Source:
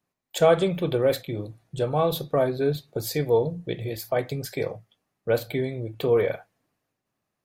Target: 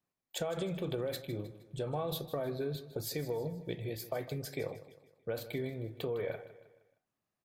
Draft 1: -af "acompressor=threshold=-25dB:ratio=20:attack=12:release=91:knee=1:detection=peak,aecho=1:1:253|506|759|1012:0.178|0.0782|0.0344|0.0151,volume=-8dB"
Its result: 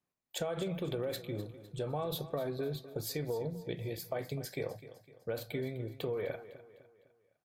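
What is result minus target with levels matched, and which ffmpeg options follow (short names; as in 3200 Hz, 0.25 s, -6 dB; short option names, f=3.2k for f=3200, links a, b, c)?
echo 97 ms late
-af "acompressor=threshold=-25dB:ratio=20:attack=12:release=91:knee=1:detection=peak,aecho=1:1:156|312|468|624:0.178|0.0782|0.0344|0.0151,volume=-8dB"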